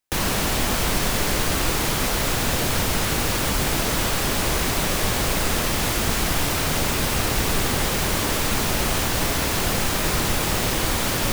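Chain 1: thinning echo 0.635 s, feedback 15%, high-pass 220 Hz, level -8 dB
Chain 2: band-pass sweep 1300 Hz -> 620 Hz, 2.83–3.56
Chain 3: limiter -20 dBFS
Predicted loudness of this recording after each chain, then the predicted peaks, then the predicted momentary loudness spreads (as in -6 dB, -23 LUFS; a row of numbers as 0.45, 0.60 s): -21.0, -33.5, -28.5 LUFS; -7.5, -20.5, -20.0 dBFS; 0, 2, 0 LU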